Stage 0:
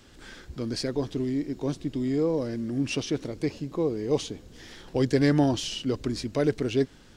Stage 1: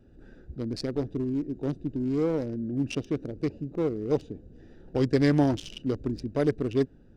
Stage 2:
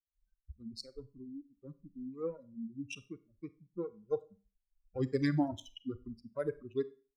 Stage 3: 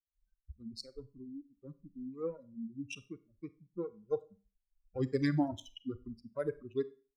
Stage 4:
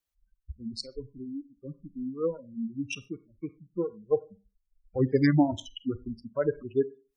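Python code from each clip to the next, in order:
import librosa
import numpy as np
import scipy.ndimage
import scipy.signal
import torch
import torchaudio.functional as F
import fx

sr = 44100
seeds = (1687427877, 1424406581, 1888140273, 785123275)

y1 = fx.wiener(x, sr, points=41)
y2 = fx.bin_expand(y1, sr, power=3.0)
y2 = fx.dereverb_blind(y2, sr, rt60_s=0.68)
y2 = fx.rev_schroeder(y2, sr, rt60_s=0.35, comb_ms=31, drr_db=15.5)
y2 = y2 * librosa.db_to_amplitude(-3.5)
y3 = y2
y4 = fx.spec_gate(y3, sr, threshold_db=-30, keep='strong')
y4 = y4 * librosa.db_to_amplitude(8.5)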